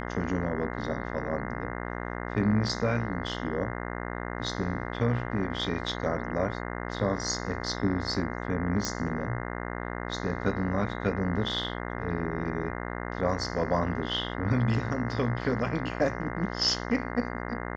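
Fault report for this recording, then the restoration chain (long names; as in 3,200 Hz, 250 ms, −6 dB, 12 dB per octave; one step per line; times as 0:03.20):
mains buzz 60 Hz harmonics 35 −35 dBFS
0:08.85: click −15 dBFS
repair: click removal
hum removal 60 Hz, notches 35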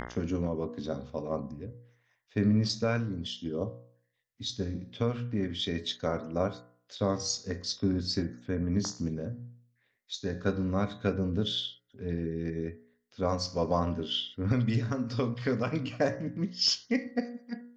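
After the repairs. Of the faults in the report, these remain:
none of them is left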